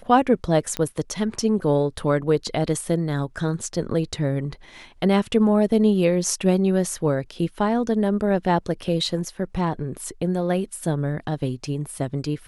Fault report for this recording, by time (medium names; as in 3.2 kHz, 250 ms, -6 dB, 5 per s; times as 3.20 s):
0.77 s: pop -11 dBFS